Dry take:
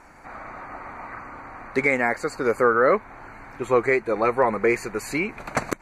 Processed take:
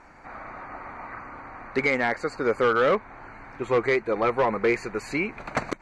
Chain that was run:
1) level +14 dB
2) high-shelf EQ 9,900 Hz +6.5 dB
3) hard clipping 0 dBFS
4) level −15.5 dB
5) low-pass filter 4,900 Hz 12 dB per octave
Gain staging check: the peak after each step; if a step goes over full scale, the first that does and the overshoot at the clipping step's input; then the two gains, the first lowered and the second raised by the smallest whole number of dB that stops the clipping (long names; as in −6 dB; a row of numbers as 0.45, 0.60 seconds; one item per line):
+8.0, +8.0, 0.0, −15.5, −15.0 dBFS
step 1, 8.0 dB
step 1 +6 dB, step 4 −7.5 dB